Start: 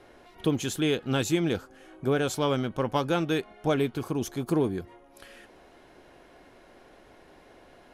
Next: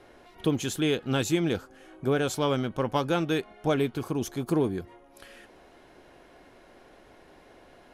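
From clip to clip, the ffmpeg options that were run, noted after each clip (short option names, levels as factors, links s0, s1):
-af anull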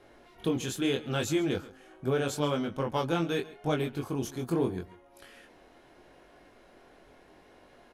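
-af "flanger=delay=20:depth=4:speed=0.78,aecho=1:1:137:0.112"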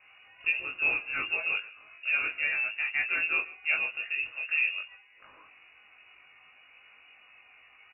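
-filter_complex "[0:a]asplit=2[s0][s1];[s1]adelay=19,volume=0.794[s2];[s0][s2]amix=inputs=2:normalize=0,lowpass=f=2500:t=q:w=0.5098,lowpass=f=2500:t=q:w=0.6013,lowpass=f=2500:t=q:w=0.9,lowpass=f=2500:t=q:w=2.563,afreqshift=-2900,volume=0.794"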